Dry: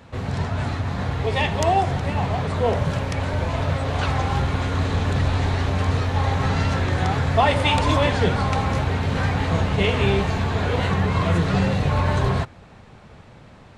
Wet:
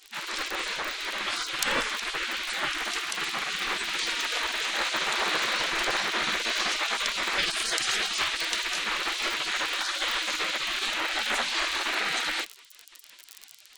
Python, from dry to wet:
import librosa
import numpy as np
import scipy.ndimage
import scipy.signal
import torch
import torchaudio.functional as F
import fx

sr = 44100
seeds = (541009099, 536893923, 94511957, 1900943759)

y = fx.fold_sine(x, sr, drive_db=5, ceiling_db=-4.5)
y = fx.dmg_crackle(y, sr, seeds[0], per_s=42.0, level_db=-23.0)
y = fx.spec_gate(y, sr, threshold_db=-25, keep='weak')